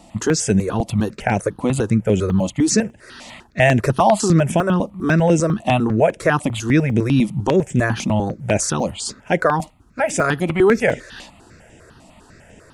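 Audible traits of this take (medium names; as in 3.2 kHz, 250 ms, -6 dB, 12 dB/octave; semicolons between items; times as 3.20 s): notches that jump at a steady rate 10 Hz 420–4300 Hz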